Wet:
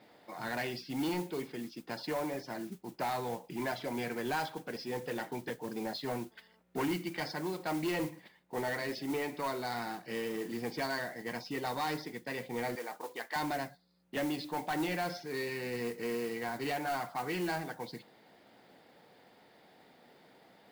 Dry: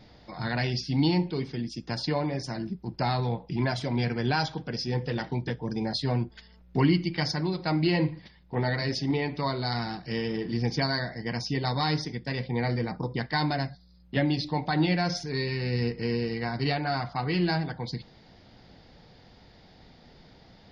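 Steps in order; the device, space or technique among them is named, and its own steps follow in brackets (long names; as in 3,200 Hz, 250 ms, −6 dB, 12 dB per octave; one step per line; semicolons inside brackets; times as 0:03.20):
carbon microphone (band-pass filter 310–2,900 Hz; soft clipping −26 dBFS, distortion −14 dB; noise that follows the level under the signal 17 dB)
0:12.75–0:13.36: high-pass filter 500 Hz 12 dB per octave
level −2 dB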